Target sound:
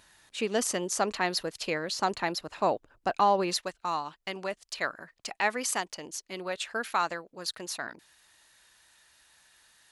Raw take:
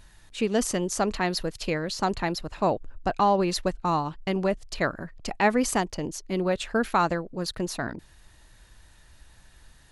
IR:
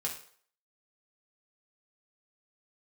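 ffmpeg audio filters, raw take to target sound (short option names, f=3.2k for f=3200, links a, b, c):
-af "asetnsamples=n=441:p=0,asendcmd='3.56 highpass f 1400',highpass=f=490:p=1"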